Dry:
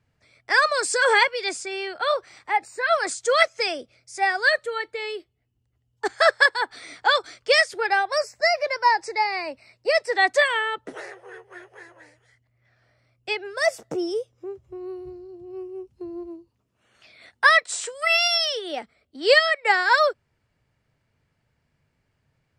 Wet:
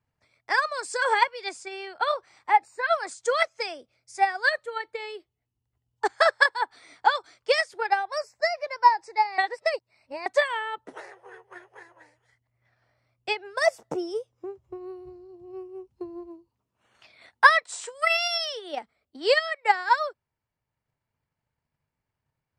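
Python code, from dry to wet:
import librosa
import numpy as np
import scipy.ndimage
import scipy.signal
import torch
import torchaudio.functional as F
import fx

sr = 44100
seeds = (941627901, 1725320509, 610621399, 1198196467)

y = fx.edit(x, sr, fx.reverse_span(start_s=9.38, length_s=0.88), tone=tone)
y = fx.peak_eq(y, sr, hz=930.0, db=7.5, octaves=0.64)
y = fx.transient(y, sr, attack_db=7, sustain_db=-2)
y = fx.rider(y, sr, range_db=4, speed_s=2.0)
y = y * 10.0 ** (-10.0 / 20.0)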